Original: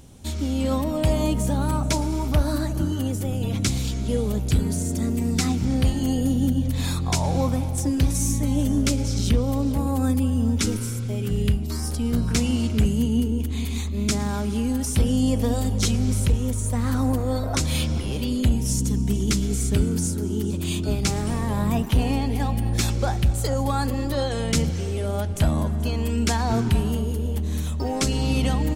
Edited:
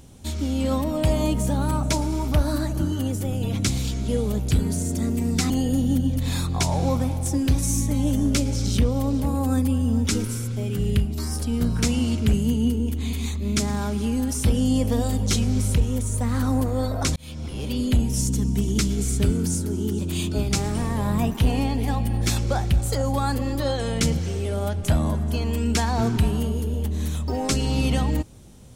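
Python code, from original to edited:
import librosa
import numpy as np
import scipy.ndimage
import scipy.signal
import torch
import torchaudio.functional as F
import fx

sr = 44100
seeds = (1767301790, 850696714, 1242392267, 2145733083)

y = fx.edit(x, sr, fx.cut(start_s=5.5, length_s=0.52),
    fx.fade_in_span(start_s=17.68, length_s=0.63), tone=tone)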